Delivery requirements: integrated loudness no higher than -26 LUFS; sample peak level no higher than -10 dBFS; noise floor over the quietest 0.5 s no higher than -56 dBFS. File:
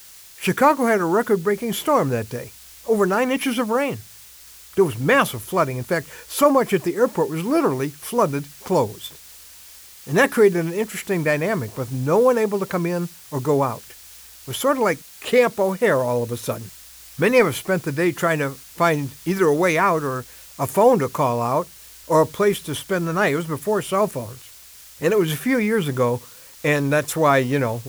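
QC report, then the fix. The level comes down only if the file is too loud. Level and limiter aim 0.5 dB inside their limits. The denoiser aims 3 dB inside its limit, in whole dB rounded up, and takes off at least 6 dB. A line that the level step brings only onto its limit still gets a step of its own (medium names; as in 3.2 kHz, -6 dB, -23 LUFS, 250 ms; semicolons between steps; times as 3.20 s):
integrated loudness -20.5 LUFS: fail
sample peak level -5.0 dBFS: fail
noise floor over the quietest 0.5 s -45 dBFS: fail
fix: noise reduction 8 dB, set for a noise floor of -45 dBFS; trim -6 dB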